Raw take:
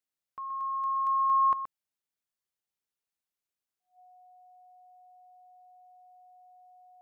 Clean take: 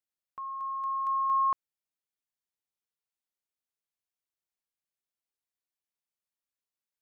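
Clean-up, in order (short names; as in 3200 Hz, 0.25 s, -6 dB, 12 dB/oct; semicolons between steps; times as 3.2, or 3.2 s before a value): notch 730 Hz, Q 30; inverse comb 0.125 s -9.5 dB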